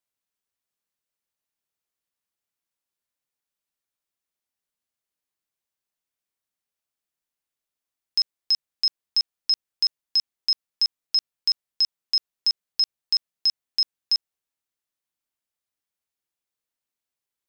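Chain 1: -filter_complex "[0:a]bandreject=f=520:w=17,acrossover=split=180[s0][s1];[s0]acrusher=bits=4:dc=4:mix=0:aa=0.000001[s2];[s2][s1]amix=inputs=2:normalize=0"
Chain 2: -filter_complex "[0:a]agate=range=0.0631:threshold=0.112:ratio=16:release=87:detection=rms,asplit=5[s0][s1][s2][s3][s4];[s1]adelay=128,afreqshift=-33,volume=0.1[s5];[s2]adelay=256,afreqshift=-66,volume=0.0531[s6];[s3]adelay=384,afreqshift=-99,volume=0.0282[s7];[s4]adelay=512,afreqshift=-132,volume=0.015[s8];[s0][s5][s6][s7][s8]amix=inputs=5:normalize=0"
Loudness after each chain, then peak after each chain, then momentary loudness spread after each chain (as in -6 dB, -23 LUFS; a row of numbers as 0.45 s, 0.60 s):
-23.5 LUFS, -25.0 LUFS; -14.5 dBFS, -15.0 dBFS; 3 LU, 3 LU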